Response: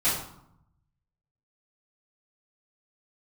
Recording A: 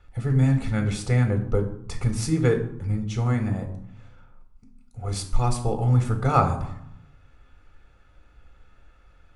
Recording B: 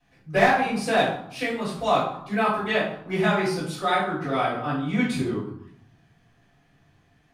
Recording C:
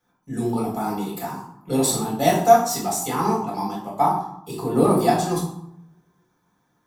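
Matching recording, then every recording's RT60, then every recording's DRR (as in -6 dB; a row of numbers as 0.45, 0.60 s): B; 0.75, 0.75, 0.75 s; 4.5, -14.5, -5.0 dB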